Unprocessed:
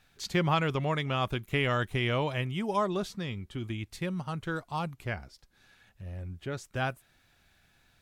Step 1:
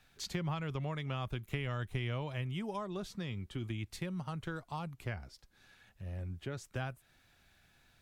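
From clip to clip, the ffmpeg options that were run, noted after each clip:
-filter_complex "[0:a]acrossover=split=130[a][b];[b]acompressor=threshold=-37dB:ratio=4[c];[a][c]amix=inputs=2:normalize=0,volume=-1.5dB"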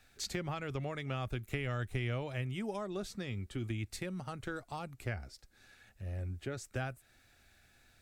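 -af "equalizer=f=160:t=o:w=0.33:g=-10,equalizer=f=1k:t=o:w=0.33:g=-8,equalizer=f=3.15k:t=o:w=0.33:g=-5,equalizer=f=8k:t=o:w=0.33:g=4,volume=2.5dB"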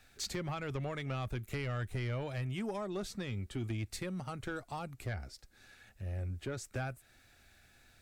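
-af "asoftclip=type=tanh:threshold=-31dB,volume=2dB"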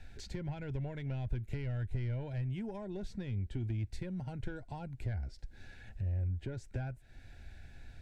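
-af "asuperstop=centerf=1200:order=8:qfactor=4.1,acompressor=threshold=-55dB:ratio=2,aemphasis=mode=reproduction:type=bsi,volume=4dB"

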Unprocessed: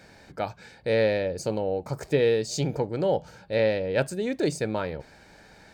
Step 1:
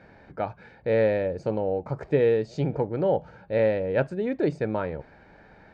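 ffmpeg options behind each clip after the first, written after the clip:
-af "lowpass=1.9k,volume=1dB"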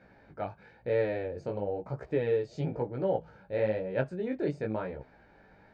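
-af "flanger=delay=15.5:depth=5.2:speed=1,volume=-3.5dB"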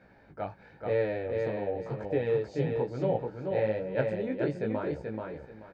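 -af "aecho=1:1:433|866|1299:0.631|0.151|0.0363"

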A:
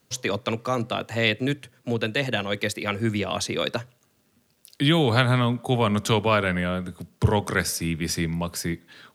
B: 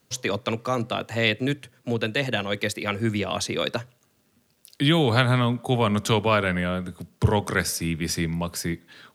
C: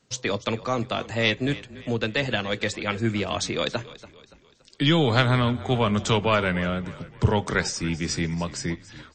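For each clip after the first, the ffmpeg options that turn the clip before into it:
-af anull
-filter_complex "[0:a]aeval=exprs='0.562*(cos(1*acos(clip(val(0)/0.562,-1,1)))-cos(1*PI/2))+0.0316*(cos(4*acos(clip(val(0)/0.562,-1,1)))-cos(4*PI/2))':c=same,asplit=5[a][b][c][d][e];[b]adelay=285,afreqshift=-30,volume=-17.5dB[f];[c]adelay=570,afreqshift=-60,volume=-24.8dB[g];[d]adelay=855,afreqshift=-90,volume=-32.2dB[h];[e]adelay=1140,afreqshift=-120,volume=-39.5dB[i];[a][f][g][h][i]amix=inputs=5:normalize=0" -ar 22050 -c:a libmp3lame -b:a 32k

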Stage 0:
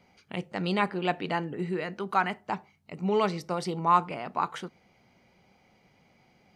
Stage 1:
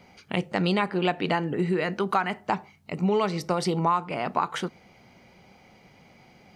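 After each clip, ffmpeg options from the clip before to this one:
-af "acompressor=threshold=-29dB:ratio=6,volume=8.5dB"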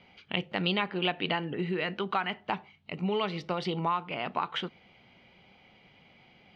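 -af "lowpass=f=3.2k:t=q:w=3.2,volume=-6.5dB"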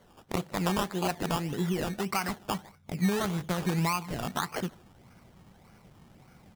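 -filter_complex "[0:a]asplit=2[a][b];[b]adelay=150,highpass=300,lowpass=3.4k,asoftclip=type=hard:threshold=-20.5dB,volume=-22dB[c];[a][c]amix=inputs=2:normalize=0,asubboost=boost=3.5:cutoff=230,acrusher=samples=17:mix=1:aa=0.000001:lfo=1:lforange=10.2:lforate=1.7"

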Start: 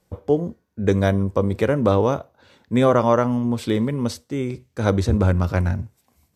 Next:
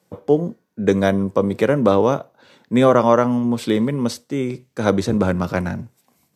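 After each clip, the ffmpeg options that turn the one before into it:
-af "highpass=f=130:w=0.5412,highpass=f=130:w=1.3066,volume=3dB"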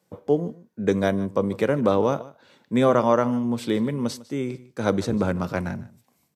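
-af "aecho=1:1:151:0.106,volume=-5dB"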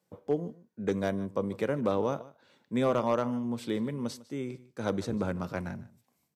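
-af "asoftclip=type=hard:threshold=-10.5dB,volume=-8dB"

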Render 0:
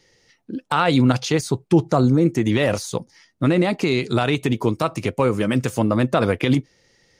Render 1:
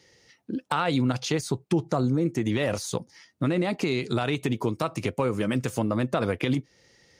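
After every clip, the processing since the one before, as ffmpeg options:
-af "highpass=41,acompressor=threshold=-27dB:ratio=2"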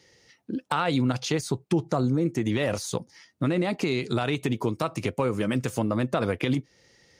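-af anull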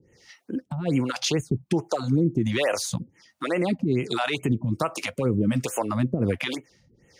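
-filter_complex "[0:a]acrossover=split=410[a][b];[a]aeval=exprs='val(0)*(1-1/2+1/2*cos(2*PI*1.3*n/s))':c=same[c];[b]aeval=exprs='val(0)*(1-1/2-1/2*cos(2*PI*1.3*n/s))':c=same[d];[c][d]amix=inputs=2:normalize=0,alimiter=limit=-22dB:level=0:latency=1:release=78,afftfilt=real='re*(1-between(b*sr/1024,340*pow(4600/340,0.5+0.5*sin(2*PI*2.3*pts/sr))/1.41,340*pow(4600/340,0.5+0.5*sin(2*PI*2.3*pts/sr))*1.41))':imag='im*(1-between(b*sr/1024,340*pow(4600/340,0.5+0.5*sin(2*PI*2.3*pts/sr))/1.41,340*pow(4600/340,0.5+0.5*sin(2*PI*2.3*pts/sr))*1.41))':win_size=1024:overlap=0.75,volume=8.5dB"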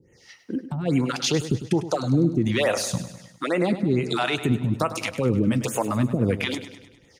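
-af "aecho=1:1:101|202|303|404|505|606:0.237|0.128|0.0691|0.0373|0.0202|0.0109,volume=1.5dB"

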